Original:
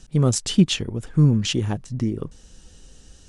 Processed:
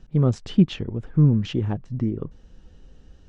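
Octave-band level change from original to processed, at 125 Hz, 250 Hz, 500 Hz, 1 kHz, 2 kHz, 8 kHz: -0.5 dB, -0.5 dB, -1.5 dB, -3.0 dB, -7.5 dB, under -20 dB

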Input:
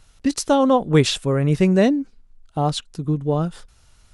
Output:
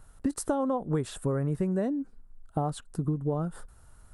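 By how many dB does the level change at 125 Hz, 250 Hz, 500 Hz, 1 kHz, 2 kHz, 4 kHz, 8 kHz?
-9.5 dB, -10.5 dB, -11.5 dB, -11.5 dB, -17.0 dB, -21.5 dB, -10.5 dB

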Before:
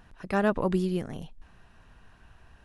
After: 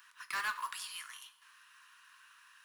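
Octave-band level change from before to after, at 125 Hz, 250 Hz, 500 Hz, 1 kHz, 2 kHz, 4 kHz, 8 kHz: under -40 dB, under -40 dB, -35.5 dB, -6.5 dB, -1.5 dB, +3.5 dB, +8.0 dB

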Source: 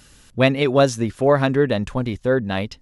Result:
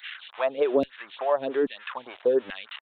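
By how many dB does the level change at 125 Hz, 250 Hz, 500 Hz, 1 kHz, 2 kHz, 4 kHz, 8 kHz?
under -30 dB, -12.5 dB, -6.0 dB, -7.5 dB, -11.0 dB, -9.5 dB, under -35 dB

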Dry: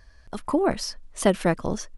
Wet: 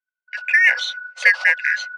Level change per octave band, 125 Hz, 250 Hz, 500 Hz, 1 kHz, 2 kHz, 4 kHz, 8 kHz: under -40 dB, under -40 dB, -15.5 dB, -6.0 dB, +22.5 dB, +8.0 dB, -3.5 dB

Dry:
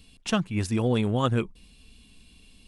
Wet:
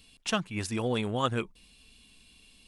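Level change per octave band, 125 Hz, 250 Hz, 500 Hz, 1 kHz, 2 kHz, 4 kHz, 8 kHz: -8.0 dB, -6.5 dB, -3.5 dB, -1.5 dB, -0.5 dB, 0.0 dB, 0.0 dB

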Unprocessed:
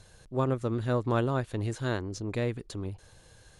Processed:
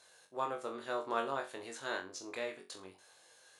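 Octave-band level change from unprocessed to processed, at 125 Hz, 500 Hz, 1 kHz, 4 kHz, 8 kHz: -31.0 dB, -8.0 dB, -2.0 dB, -2.0 dB, -2.0 dB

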